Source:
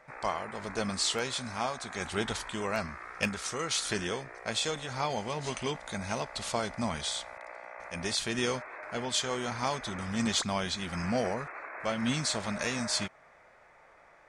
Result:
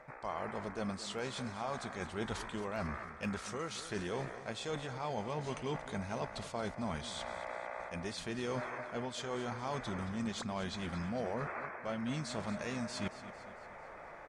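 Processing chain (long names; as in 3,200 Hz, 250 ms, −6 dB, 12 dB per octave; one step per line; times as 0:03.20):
reversed playback
downward compressor 5 to 1, threshold −46 dBFS, peak gain reduction 19.5 dB
reversed playback
high-shelf EQ 2,100 Hz −10 dB
repeating echo 225 ms, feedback 50%, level −14 dB
level +10 dB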